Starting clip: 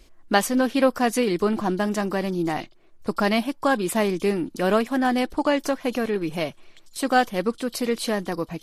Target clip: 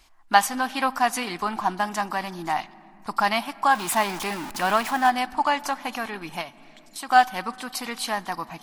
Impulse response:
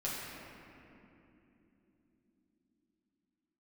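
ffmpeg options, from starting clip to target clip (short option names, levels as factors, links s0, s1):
-filter_complex "[0:a]asettb=1/sr,asplit=3[s0][s1][s2];[s0]atrim=end=3.754[s3];[s1]atrim=start=3.75:end=5.1,asetpts=PTS-STARTPTS,afade=t=in:d=0.004:c=qsin,afade=t=out:st=1.346:d=0.004:c=qsin,aeval=exprs='val(0)+0.5*0.0422*sgn(val(0))':c=same[s4];[s2]atrim=start=5.096[s5];[s3][s4]acrossfade=d=0.004:c1=hsin:c2=qsin[s6];[s6][s5]acrossfade=d=0.004:c1=qsin:c2=hsin,lowshelf=f=640:t=q:w=3:g=-9,asplit=2[s7][s8];[1:a]atrim=start_sample=2205[s9];[s8][s9]afir=irnorm=-1:irlink=0,volume=0.0841[s10];[s7][s10]amix=inputs=2:normalize=0,asettb=1/sr,asplit=3[s11][s12][s13];[s11]atrim=end=6.414[s14];[s12]atrim=start=6.41:end=7.09,asetpts=PTS-STARTPTS,afade=t=in:d=0.004:c=qsin,afade=t=out:st=0.676:d=0.004:c=qsin,acompressor=threshold=0.0178:ratio=2.5[s15];[s13]atrim=start=7.086[s16];[s14][s15]acrossfade=d=0.004:c1=hsin:c2=qsin[s17];[s17][s16]acrossfade=d=0.004:c1=qsin:c2=hsin"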